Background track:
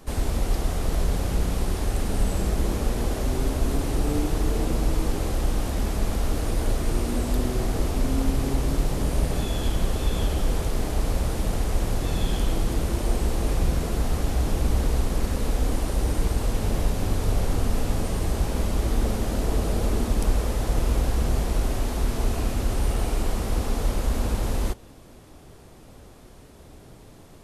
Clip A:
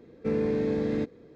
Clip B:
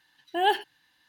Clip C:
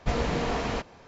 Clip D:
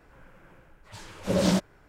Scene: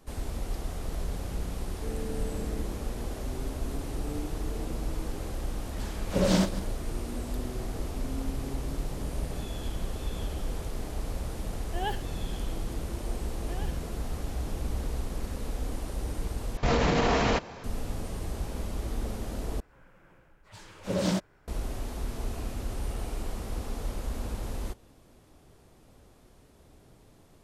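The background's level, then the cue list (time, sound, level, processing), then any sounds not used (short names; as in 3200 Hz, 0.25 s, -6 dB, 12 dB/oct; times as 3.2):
background track -9.5 dB
1.58 add A -12.5 dB
4.86 add D -1 dB + regenerating reverse delay 0.102 s, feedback 43%, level -13 dB
11.39 add B -10.5 dB
13.14 add B -17.5 dB + limiter -19 dBFS
16.57 replace with C -14.5 dB + maximiser +22.5 dB
19.6 replace with D -4.5 dB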